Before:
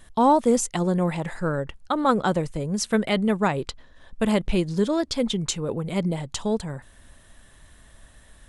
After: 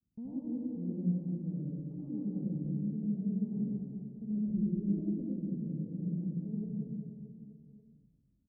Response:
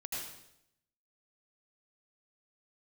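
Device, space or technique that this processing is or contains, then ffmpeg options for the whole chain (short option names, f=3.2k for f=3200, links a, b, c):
club heard from the street: -filter_complex "[0:a]highpass=63,aemphasis=mode=production:type=bsi,agate=range=-33dB:threshold=-44dB:ratio=3:detection=peak,alimiter=limit=-15.5dB:level=0:latency=1,lowpass=f=240:w=0.5412,lowpass=f=240:w=1.3066[a];[1:a]atrim=start_sample=2205[b];[a][b]afir=irnorm=-1:irlink=0,aecho=1:1:190|399|628.9|881.8|1160:0.631|0.398|0.251|0.158|0.1,volume=-2.5dB"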